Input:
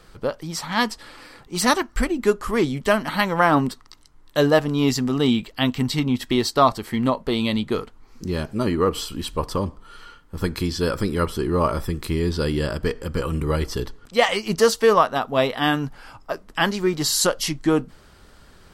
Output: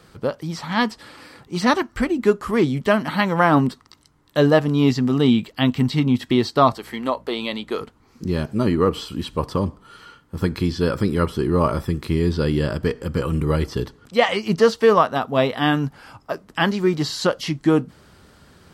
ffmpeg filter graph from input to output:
-filter_complex "[0:a]asettb=1/sr,asplit=3[a][b][c];[a]atrim=end=6.754[d];[b]atrim=start=6.75:end=7.81,asetpts=PTS-STARTPTS,afade=t=in:d=0.004:c=qsin,afade=t=out:st=1.056:d=0.004:c=qsin,highpass=420,aeval=exprs='val(0)+0.00282*(sin(2*PI*60*n/s)+sin(2*PI*2*60*n/s)/2+sin(2*PI*3*60*n/s)/3+sin(2*PI*4*60*n/s)/4+sin(2*PI*5*60*n/s)/5)':c=same[e];[c]atrim=start=7.806[f];[d][e]acrossfade=d=0.004:c1=hsin:c2=qsin[g];[g][f]acrossfade=d=0.004:c1=qsin:c2=hsin,acrossover=split=4700[h][i];[i]acompressor=threshold=-44dB:ratio=4:attack=1:release=60[j];[h][j]amix=inputs=2:normalize=0,highpass=99,lowshelf=f=230:g=7.5"

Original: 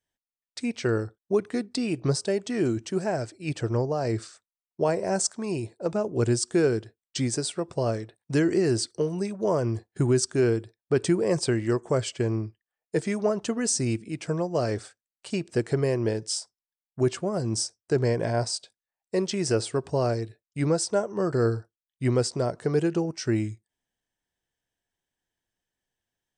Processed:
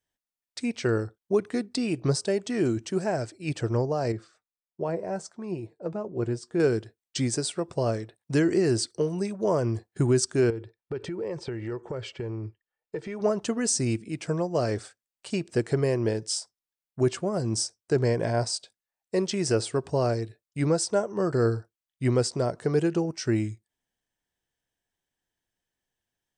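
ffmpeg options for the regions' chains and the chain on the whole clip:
-filter_complex "[0:a]asettb=1/sr,asplit=3[a][b][c];[a]atrim=end=4.124[d];[b]atrim=start=4.12:end=6.6,asetpts=PTS-STARTPTS,afade=t=in:d=0.004:c=qsin,afade=t=out:st=2.476:d=0.004:c=qsin,lowpass=f=1.5k:p=1,flanger=delay=5.2:depth=1.6:regen=61:speed=1.5:shape=triangular[e];[c]atrim=start=6.596[f];[d][e]acrossfade=d=0.004:c1=hsin:c2=qsin[g];[g][f]acrossfade=d=0.004:c1=qsin:c2=hsin,asettb=1/sr,asplit=3[h][i][j];[h]atrim=end=10.504[k];[i]atrim=start=10.5:end=13.21,asetpts=PTS-STARTPTS,afade=t=in:d=0.004:c=qsin,afade=t=out:st=2.706:d=0.004:c=qsin,acompressor=threshold=-29dB:ratio=12:attack=3.2:release=140:knee=1:detection=peak,lowpass=3.3k,aecho=1:1:2.2:0.35,atrim=end_sample=119511[l];[j]atrim=start=13.206[m];[k][l]acrossfade=d=0.004:c1=hsin:c2=qsin[n];[n][m]acrossfade=d=0.004:c1=qsin:c2=hsin"

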